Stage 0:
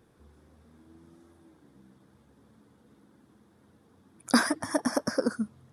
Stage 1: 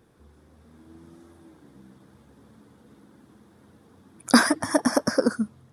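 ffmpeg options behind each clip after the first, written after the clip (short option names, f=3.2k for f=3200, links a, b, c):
-af "dynaudnorm=f=480:g=3:m=4dB,volume=2.5dB"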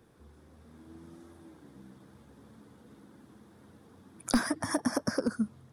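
-filter_complex "[0:a]aeval=exprs='clip(val(0),-1,0.299)':c=same,acrossover=split=190[a][b];[b]acompressor=threshold=-27dB:ratio=6[c];[a][c]amix=inputs=2:normalize=0,volume=-1.5dB"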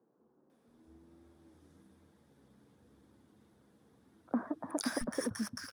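-filter_complex "[0:a]asplit=2[a][b];[b]aeval=exprs='val(0)*gte(abs(val(0)),0.015)':c=same,volume=-5dB[c];[a][c]amix=inputs=2:normalize=0,acrossover=split=170|1200[d][e][f];[f]adelay=500[g];[d]adelay=670[h];[h][e][g]amix=inputs=3:normalize=0,volume=-8.5dB"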